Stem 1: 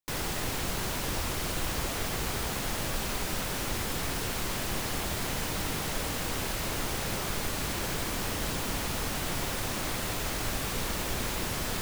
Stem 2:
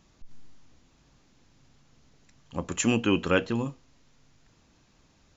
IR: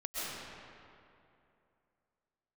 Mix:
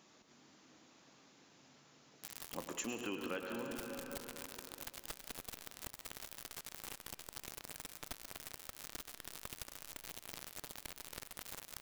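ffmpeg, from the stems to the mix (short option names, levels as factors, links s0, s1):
-filter_complex "[0:a]bandreject=f=50:t=h:w=6,bandreject=f=100:t=h:w=6,bandreject=f=150:t=h:w=6,bandreject=f=200:t=h:w=6,bandreject=f=250:t=h:w=6,bandreject=f=300:t=h:w=6,bandreject=f=350:t=h:w=6,aecho=1:1:6.8:0.32,acrusher=bits=3:mix=0:aa=0.000001,adelay=2150,volume=0.501,asplit=2[s0][s1];[s1]volume=0.126[s2];[1:a]highpass=270,volume=0.891,asplit=3[s3][s4][s5];[s4]volume=0.398[s6];[s5]volume=0.473[s7];[2:a]atrim=start_sample=2205[s8];[s2][s6]amix=inputs=2:normalize=0[s9];[s9][s8]afir=irnorm=-1:irlink=0[s10];[s7]aecho=0:1:103:1[s11];[s0][s3][s10][s11]amix=inputs=4:normalize=0,acompressor=threshold=0.00794:ratio=4"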